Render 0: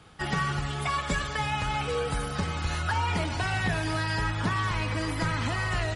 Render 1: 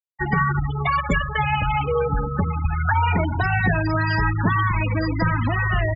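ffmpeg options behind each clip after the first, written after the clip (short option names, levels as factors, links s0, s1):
-af "afftfilt=real='re*gte(hypot(re,im),0.0631)':imag='im*gte(hypot(re,im),0.0631)':win_size=1024:overlap=0.75,volume=2.66"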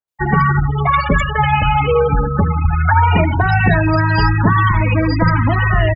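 -filter_complex "[0:a]bandreject=f=60:t=h:w=6,bandreject=f=120:t=h:w=6,bandreject=f=180:t=h:w=6,bandreject=f=240:t=h:w=6,bandreject=f=300:t=h:w=6,bandreject=f=360:t=h:w=6,acrossover=split=1900[s0][s1];[s1]adelay=80[s2];[s0][s2]amix=inputs=2:normalize=0,volume=2.51"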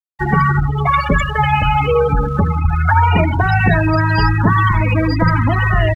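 -af "aeval=exprs='sgn(val(0))*max(abs(val(0))-0.00531,0)':c=same"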